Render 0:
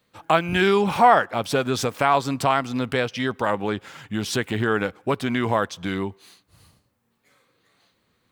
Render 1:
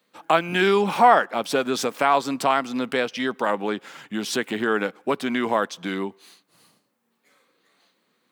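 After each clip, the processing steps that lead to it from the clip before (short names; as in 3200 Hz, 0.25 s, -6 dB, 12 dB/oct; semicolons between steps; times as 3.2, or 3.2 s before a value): HPF 190 Hz 24 dB/oct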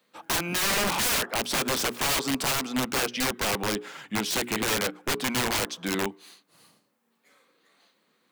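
notches 60/120/180/240/300/360/420 Hz; wrapped overs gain 20 dB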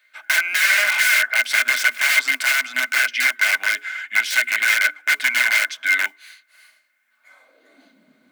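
modulation noise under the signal 30 dB; high-pass sweep 1800 Hz -> 93 Hz, 7.07–8.25; small resonant body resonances 260/620/1500/2100 Hz, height 17 dB, ringing for 50 ms; gain +2 dB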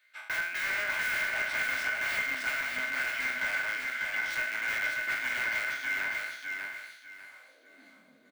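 spectral trails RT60 0.65 s; de-esser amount 85%; feedback echo 0.596 s, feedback 26%, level -4 dB; gain -8 dB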